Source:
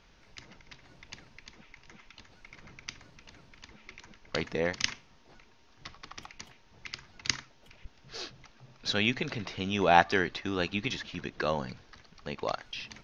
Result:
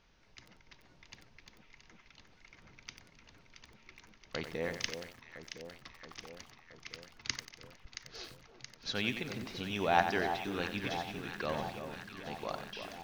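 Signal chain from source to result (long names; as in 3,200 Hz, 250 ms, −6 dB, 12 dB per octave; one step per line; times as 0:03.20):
on a send: delay that swaps between a low-pass and a high-pass 337 ms, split 1,200 Hz, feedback 81%, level −8 dB
on the sum: feedback echo at a low word length 92 ms, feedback 35%, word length 7 bits, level −8.5 dB
level −7 dB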